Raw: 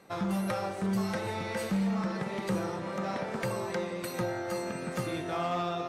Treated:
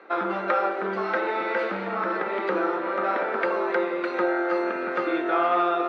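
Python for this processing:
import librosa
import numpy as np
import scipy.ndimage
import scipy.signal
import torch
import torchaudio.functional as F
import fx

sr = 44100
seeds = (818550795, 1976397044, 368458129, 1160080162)

y = fx.cabinet(x, sr, low_hz=320.0, low_slope=24, high_hz=3200.0, hz=(340.0, 1400.0, 3000.0), db=(5, 9, -4))
y = y * 10.0 ** (8.0 / 20.0)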